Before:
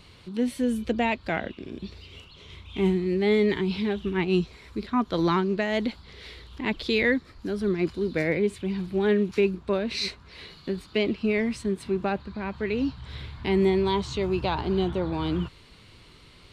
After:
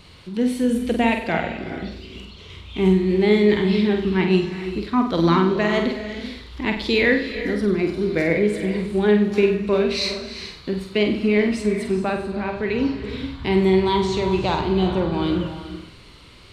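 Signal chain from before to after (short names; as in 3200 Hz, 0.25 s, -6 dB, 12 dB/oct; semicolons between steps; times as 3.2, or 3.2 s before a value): flutter echo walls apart 8.2 m, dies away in 0.46 s; non-linear reverb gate 0.46 s rising, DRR 9.5 dB; gain +4 dB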